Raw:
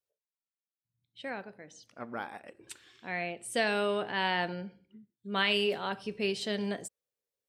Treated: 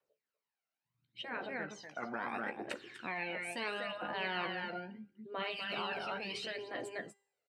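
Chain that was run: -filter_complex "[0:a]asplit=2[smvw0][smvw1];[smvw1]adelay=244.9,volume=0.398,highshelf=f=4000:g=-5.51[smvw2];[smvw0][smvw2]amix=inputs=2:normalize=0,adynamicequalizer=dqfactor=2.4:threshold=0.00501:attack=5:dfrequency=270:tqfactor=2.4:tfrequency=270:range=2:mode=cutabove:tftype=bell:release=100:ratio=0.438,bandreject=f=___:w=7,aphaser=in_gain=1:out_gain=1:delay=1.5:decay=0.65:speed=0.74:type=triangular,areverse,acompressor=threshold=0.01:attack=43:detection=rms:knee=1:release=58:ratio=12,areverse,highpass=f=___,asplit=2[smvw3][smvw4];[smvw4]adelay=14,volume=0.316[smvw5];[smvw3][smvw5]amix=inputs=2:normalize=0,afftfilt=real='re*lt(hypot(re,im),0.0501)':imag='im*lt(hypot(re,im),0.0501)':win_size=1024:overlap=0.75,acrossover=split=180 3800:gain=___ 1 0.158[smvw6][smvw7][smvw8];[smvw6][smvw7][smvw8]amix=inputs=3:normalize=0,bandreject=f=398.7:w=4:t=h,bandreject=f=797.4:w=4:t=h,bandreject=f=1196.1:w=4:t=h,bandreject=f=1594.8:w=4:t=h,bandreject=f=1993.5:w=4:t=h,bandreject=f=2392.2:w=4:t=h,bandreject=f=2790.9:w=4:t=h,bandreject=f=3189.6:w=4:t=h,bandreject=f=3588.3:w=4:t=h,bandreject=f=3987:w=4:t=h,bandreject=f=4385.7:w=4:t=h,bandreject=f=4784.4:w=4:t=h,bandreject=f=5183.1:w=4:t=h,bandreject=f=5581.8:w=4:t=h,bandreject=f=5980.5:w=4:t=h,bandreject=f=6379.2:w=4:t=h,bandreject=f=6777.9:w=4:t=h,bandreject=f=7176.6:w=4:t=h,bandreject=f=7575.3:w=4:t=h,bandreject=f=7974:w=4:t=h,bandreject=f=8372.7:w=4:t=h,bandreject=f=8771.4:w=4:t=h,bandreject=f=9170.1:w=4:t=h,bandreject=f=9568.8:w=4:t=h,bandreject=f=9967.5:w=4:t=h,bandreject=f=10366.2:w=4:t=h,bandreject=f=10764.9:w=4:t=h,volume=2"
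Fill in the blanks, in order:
3400, 75, 0.2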